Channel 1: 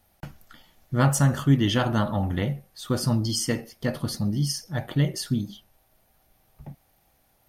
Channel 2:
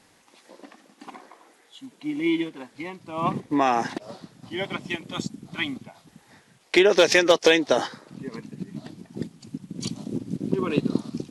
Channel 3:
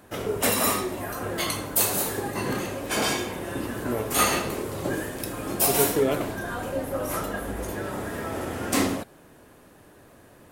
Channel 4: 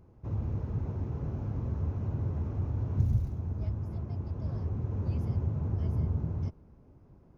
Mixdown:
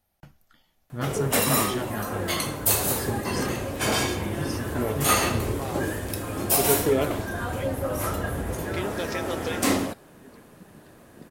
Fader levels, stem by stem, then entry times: −10.0, −16.0, +0.5, −4.0 decibels; 0.00, 2.00, 0.90, 2.35 seconds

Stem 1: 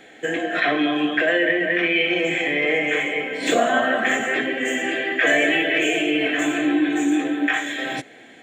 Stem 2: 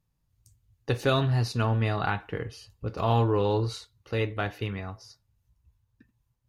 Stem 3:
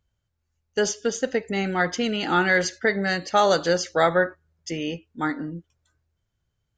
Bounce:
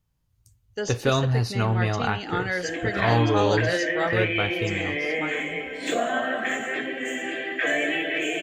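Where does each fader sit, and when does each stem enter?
−6.5, +2.0, −7.5 decibels; 2.40, 0.00, 0.00 seconds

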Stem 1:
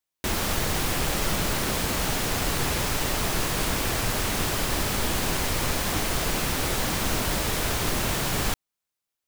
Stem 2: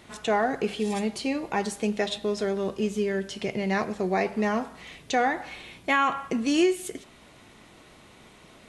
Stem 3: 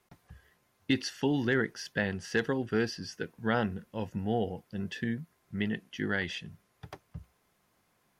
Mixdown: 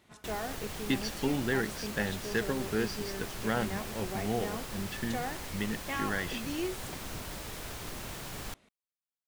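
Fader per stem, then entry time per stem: −15.0, −13.5, −2.5 decibels; 0.00, 0.00, 0.00 seconds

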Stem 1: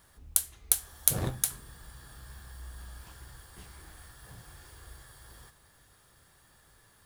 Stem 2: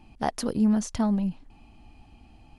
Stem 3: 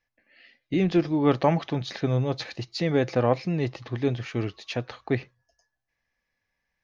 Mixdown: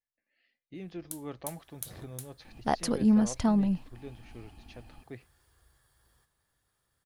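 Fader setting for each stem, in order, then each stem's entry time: −16.0, −0.5, −19.5 decibels; 0.75, 2.45, 0.00 seconds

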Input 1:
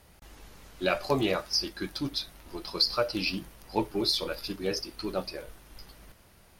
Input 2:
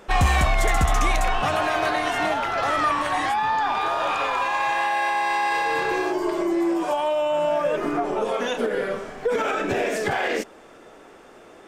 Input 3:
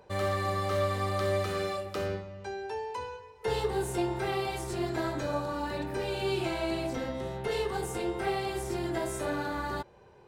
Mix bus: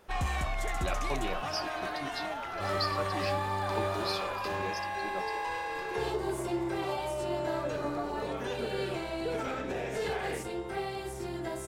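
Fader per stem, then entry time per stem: −9.5, −13.0, −4.5 decibels; 0.00, 0.00, 2.50 seconds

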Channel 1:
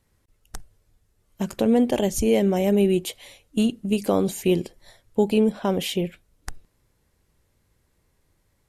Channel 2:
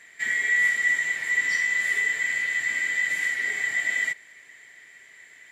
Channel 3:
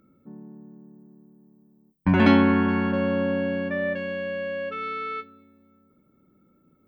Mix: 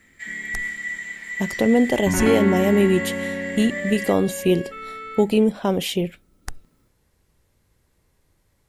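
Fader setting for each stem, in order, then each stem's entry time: +2.0, −7.0, −4.0 decibels; 0.00, 0.00, 0.00 seconds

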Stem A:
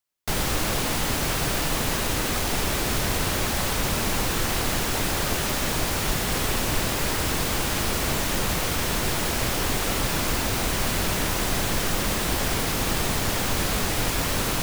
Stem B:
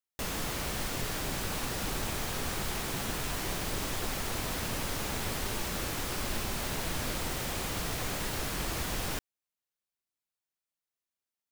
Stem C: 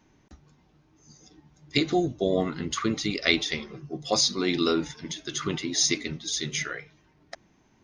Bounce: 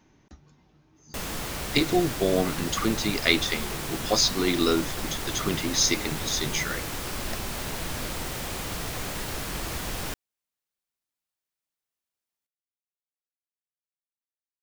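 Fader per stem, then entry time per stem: muted, +1.5 dB, +1.0 dB; muted, 0.95 s, 0.00 s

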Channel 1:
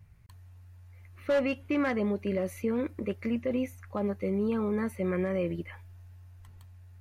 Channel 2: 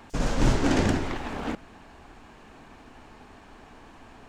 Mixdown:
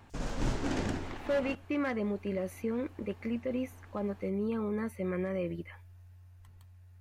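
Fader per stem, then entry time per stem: −4.0, −10.0 decibels; 0.00, 0.00 seconds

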